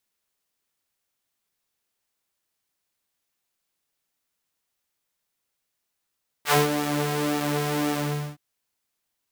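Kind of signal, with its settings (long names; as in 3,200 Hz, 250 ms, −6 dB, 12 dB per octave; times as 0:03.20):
subtractive patch with pulse-width modulation D3, detune 21 cents, oscillator 2 level −3.5 dB, noise −13 dB, filter highpass, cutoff 120 Hz, Q 1.1, filter envelope 4 octaves, filter decay 0.12 s, filter sustain 30%, attack 64 ms, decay 0.16 s, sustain −11 dB, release 0.43 s, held 1.49 s, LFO 1.9 Hz, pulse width 39%, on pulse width 11%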